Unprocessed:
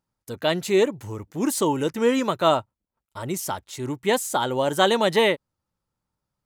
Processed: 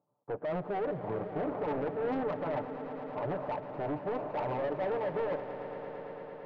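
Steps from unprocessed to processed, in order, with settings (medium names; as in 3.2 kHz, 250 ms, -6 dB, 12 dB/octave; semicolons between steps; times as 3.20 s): comb filter that takes the minimum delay 6.8 ms; Chebyshev band-pass 120–1100 Hz, order 3; peaking EQ 580 Hz +13 dB 1.2 oct; reverse; compression, threshold -20 dBFS, peak gain reduction 12.5 dB; reverse; peak limiter -23.5 dBFS, peak gain reduction 12 dB; saturation -30.5 dBFS, distortion -13 dB; echo with a slow build-up 112 ms, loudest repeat 5, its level -14.5 dB; on a send at -22 dB: reverberation RT60 0.35 s, pre-delay 4 ms; on the sum: loudspeaker Doppler distortion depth 0.24 ms; trim +1 dB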